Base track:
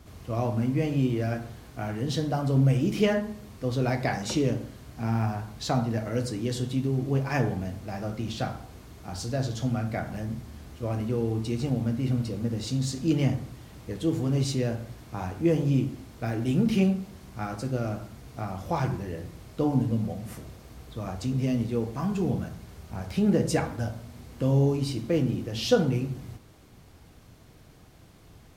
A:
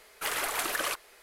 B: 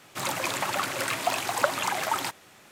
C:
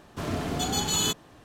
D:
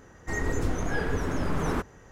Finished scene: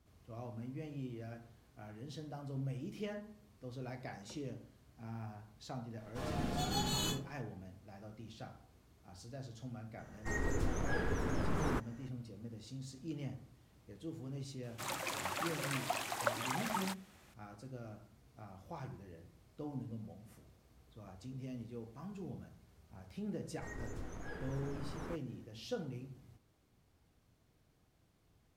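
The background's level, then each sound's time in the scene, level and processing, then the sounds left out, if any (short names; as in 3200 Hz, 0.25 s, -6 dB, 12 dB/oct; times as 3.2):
base track -19 dB
5.98 add C -18 dB + shoebox room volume 190 m³, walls furnished, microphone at 4.6 m
9.98 add D -7.5 dB
14.63 add B -11 dB
23.34 add D -17.5 dB
not used: A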